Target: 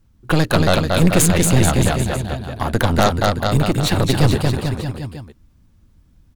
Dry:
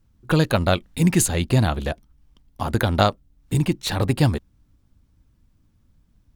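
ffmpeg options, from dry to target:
-af "aecho=1:1:230|437|623.3|791|941.9:0.631|0.398|0.251|0.158|0.1,aeval=exprs='0.75*(cos(1*acos(clip(val(0)/0.75,-1,1)))-cos(1*PI/2))+0.168*(cos(5*acos(clip(val(0)/0.75,-1,1)))-cos(5*PI/2))+0.188*(cos(6*acos(clip(val(0)/0.75,-1,1)))-cos(6*PI/2))':c=same,volume=-2dB"

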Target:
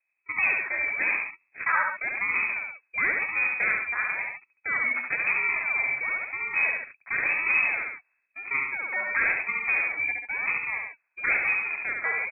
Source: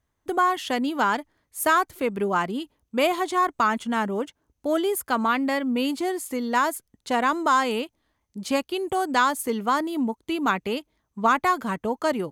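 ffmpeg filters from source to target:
-af "acrusher=samples=31:mix=1:aa=0.000001:lfo=1:lforange=31:lforate=0.97,aecho=1:1:70|92|138:0.668|0.126|0.398,lowpass=f=2.2k:t=q:w=0.5098,lowpass=f=2.2k:t=q:w=0.6013,lowpass=f=2.2k:t=q:w=0.9,lowpass=f=2.2k:t=q:w=2.563,afreqshift=-2600,volume=-5dB"

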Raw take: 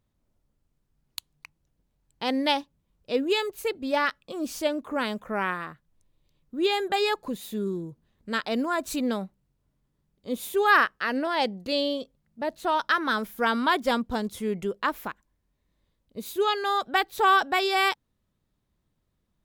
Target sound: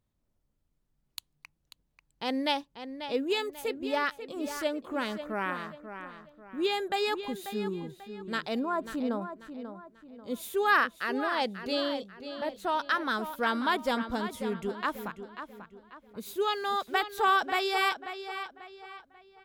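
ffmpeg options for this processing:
-filter_complex "[0:a]asettb=1/sr,asplit=3[a][b][c];[a]atrim=end=8.594[d];[b]atrim=start=8.59:end=9.22,asetpts=PTS-STARTPTS,afade=t=in:d=0.004:c=qsin,afade=t=out:st=0.626:d=0.004:c=qsin,highshelf=f=1.7k:t=q:w=1.5:g=-11.5[e];[c]atrim=start=9.216[f];[d][e]acrossfade=d=0.004:c1=hsin:c2=qsin[g];[g][f]acrossfade=d=0.004:c1=qsin:c2=hsin,asettb=1/sr,asplit=3[h][i][j];[h]atrim=end=16.264[k];[i]atrim=start=16.26:end=16.99,asetpts=PTS-STARTPTS,afade=t=in:d=0.004:c=qsin,afade=t=out:st=0.726:d=0.004:c=qsin,aeval=exprs='val(0)*gte(abs(val(0)),0.00531)':c=same[l];[j]atrim=start=16.986[m];[k][l]acrossfade=d=0.004:c1=hsin:c2=qsin[n];[n][m]acrossfade=d=0.004:c1=qsin:c2=hsin,asplit=2[o][p];[p]adelay=540,lowpass=f=4.6k:p=1,volume=-10dB,asplit=2[q][r];[r]adelay=540,lowpass=f=4.6k:p=1,volume=0.38,asplit=2[s][t];[t]adelay=540,lowpass=f=4.6k:p=1,volume=0.38,asplit=2[u][v];[v]adelay=540,lowpass=f=4.6k:p=1,volume=0.38[w];[o][q][s][u][w]amix=inputs=5:normalize=0,volume=-4.5dB"

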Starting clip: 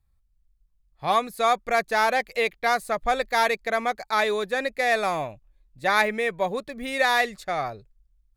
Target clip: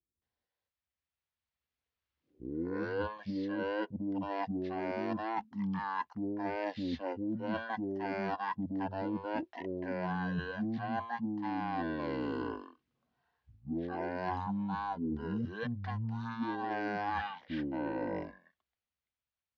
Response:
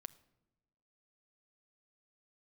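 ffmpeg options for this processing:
-filter_complex "[0:a]lowpass=6.5k,asetrate=18846,aresample=44100,aemphasis=mode=production:type=75fm,acrossover=split=380[a][b];[b]adelay=220[c];[a][c]amix=inputs=2:normalize=0,dynaudnorm=f=230:g=17:m=11.5dB,highpass=f=82:w=0.5412,highpass=f=82:w=1.3066,areverse,acompressor=threshold=-28dB:ratio=12,areverse,volume=-4.5dB"

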